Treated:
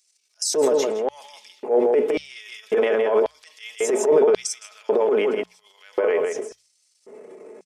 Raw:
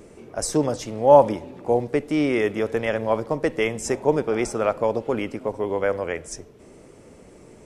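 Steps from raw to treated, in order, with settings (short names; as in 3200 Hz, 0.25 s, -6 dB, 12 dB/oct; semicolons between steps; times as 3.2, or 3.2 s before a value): comb 4.7 ms, depth 59%; on a send: echo 0.161 s -6.5 dB; on the sum: transient shaper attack -11 dB, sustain +9 dB; LFO high-pass square 0.92 Hz 400–4700 Hz; spectral noise reduction 8 dB; in parallel at -2 dB: limiter -12.5 dBFS, peak gain reduction 9 dB; on the sum: notches 60/120/180 Hz; gain -6 dB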